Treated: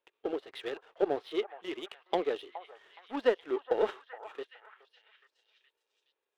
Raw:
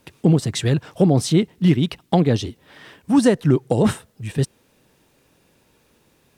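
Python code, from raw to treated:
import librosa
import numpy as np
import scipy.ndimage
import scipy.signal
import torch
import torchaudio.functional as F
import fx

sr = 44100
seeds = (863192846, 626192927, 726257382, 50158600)

y = scipy.signal.sosfilt(scipy.signal.ellip(3, 1.0, 40, [400.0, 3400.0], 'bandpass', fs=sr, output='sos'), x)
y = fx.power_curve(y, sr, exponent=1.4)
y = fx.hpss(y, sr, part='percussive', gain_db=-7)
y = fx.echo_stepped(y, sr, ms=419, hz=970.0, octaves=0.7, feedback_pct=70, wet_db=-9.0)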